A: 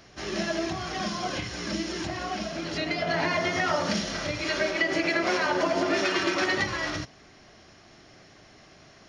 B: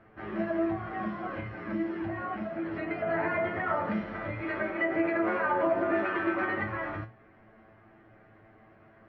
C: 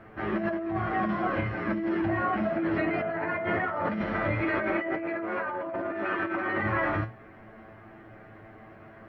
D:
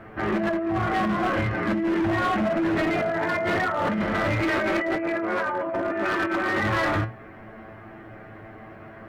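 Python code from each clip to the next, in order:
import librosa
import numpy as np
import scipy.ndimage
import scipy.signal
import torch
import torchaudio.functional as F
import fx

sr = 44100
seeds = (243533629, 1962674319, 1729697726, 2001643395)

y1 = scipy.signal.sosfilt(scipy.signal.butter(4, 1900.0, 'lowpass', fs=sr, output='sos'), x)
y1 = fx.hum_notches(y1, sr, base_hz=60, count=2)
y1 = fx.comb_fb(y1, sr, f0_hz=110.0, decay_s=0.17, harmonics='all', damping=0.0, mix_pct=90)
y1 = y1 * librosa.db_to_amplitude(4.0)
y2 = fx.over_compress(y1, sr, threshold_db=-34.0, ratio=-1.0)
y2 = y2 * librosa.db_to_amplitude(5.0)
y3 = np.clip(y2, -10.0 ** (-26.0 / 20.0), 10.0 ** (-26.0 / 20.0))
y3 = y3 * librosa.db_to_amplitude(6.0)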